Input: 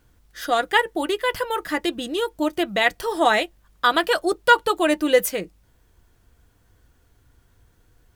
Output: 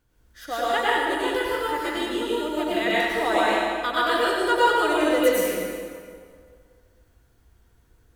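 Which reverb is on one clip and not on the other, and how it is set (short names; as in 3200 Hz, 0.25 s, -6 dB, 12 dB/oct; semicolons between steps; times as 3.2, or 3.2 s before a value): plate-style reverb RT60 2 s, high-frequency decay 0.75×, pre-delay 85 ms, DRR -8 dB; gain -10 dB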